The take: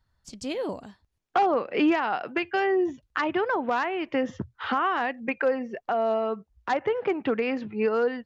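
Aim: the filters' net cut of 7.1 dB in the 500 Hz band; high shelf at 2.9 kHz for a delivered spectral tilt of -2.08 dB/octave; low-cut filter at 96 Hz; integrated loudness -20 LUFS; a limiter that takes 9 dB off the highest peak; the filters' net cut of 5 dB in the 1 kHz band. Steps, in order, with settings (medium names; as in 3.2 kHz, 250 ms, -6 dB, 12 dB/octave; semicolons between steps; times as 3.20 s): high-pass 96 Hz; peaking EQ 500 Hz -8.5 dB; peaking EQ 1 kHz -4.5 dB; treble shelf 2.9 kHz +8.5 dB; trim +12.5 dB; peak limiter -9 dBFS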